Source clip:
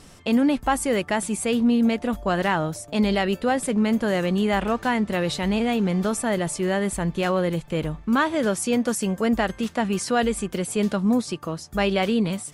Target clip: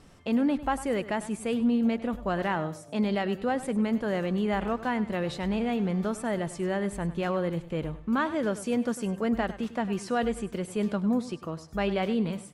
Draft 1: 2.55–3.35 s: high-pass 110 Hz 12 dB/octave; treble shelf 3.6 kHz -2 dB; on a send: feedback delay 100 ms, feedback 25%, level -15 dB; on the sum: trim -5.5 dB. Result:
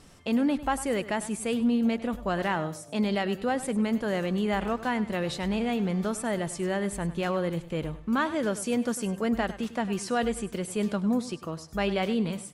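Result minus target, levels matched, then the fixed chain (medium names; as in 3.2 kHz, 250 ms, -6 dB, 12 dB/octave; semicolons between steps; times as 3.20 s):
8 kHz band +6.0 dB
2.55–3.35 s: high-pass 110 Hz 12 dB/octave; treble shelf 3.6 kHz -9.5 dB; on a send: feedback delay 100 ms, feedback 25%, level -15 dB; on the sum: trim -5.5 dB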